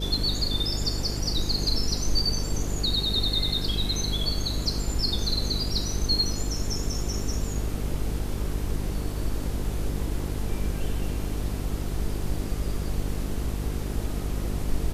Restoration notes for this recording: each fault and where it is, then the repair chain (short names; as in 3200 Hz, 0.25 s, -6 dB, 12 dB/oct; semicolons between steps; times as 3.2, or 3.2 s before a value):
buzz 50 Hz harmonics 9 -31 dBFS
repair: de-hum 50 Hz, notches 9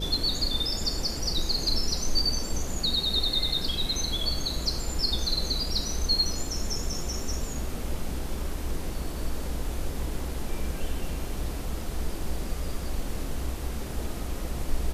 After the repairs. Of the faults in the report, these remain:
none